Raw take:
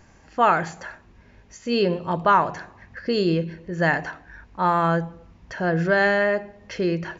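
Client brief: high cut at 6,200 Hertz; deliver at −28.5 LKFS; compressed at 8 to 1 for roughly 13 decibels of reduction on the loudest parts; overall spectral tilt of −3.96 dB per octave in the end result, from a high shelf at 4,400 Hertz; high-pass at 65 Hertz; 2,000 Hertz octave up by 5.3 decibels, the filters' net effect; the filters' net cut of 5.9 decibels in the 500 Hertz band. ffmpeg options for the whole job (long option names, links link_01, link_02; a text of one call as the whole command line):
ffmpeg -i in.wav -af "highpass=65,lowpass=6200,equalizer=frequency=500:width_type=o:gain=-8.5,equalizer=frequency=2000:width_type=o:gain=8,highshelf=frequency=4400:gain=-5,acompressor=threshold=-26dB:ratio=8,volume=3dB" out.wav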